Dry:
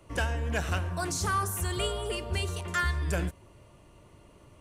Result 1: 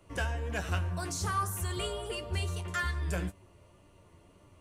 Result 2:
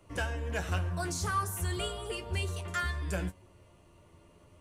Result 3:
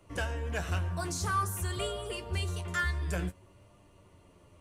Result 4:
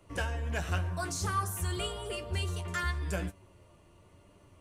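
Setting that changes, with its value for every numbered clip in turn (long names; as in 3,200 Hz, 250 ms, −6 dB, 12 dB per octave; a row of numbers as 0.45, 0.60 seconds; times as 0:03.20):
flanger, speed: 1.8, 0.36, 0.53, 0.92 Hertz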